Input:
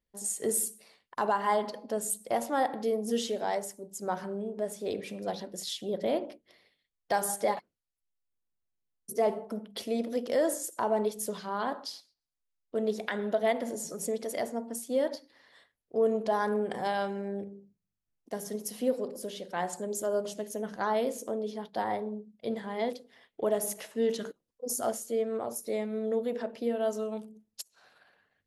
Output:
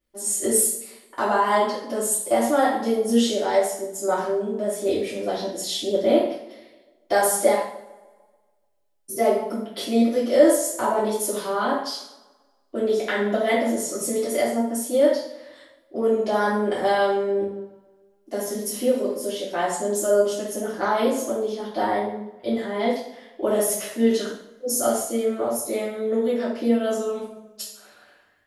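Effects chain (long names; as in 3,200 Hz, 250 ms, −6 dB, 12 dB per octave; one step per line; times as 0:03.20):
on a send: tape delay 147 ms, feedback 55%, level −19 dB, low-pass 2,900 Hz
on the sum: coupled-rooms reverb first 0.54 s, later 1.6 s, from −27 dB, DRR −9 dB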